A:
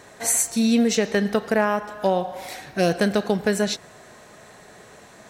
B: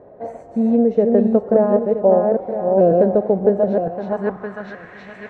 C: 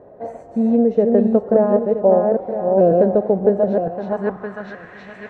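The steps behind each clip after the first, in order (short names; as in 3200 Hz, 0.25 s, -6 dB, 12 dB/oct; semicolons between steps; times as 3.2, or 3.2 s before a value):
regenerating reverse delay 0.485 s, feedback 42%, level -3 dB; low-pass sweep 570 Hz -> 2200 Hz, 3.63–5.09; gain +1 dB
notch 2200 Hz, Q 27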